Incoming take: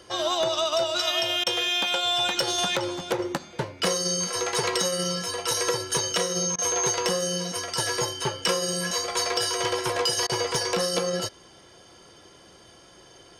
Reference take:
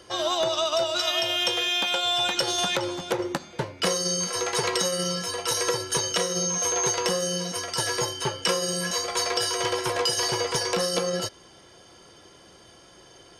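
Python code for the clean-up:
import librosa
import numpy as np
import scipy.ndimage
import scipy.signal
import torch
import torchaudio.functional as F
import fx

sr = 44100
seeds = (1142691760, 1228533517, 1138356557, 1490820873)

y = fx.fix_declip(x, sr, threshold_db=-15.0)
y = fx.fix_interpolate(y, sr, at_s=(1.44, 6.56, 10.27), length_ms=23.0)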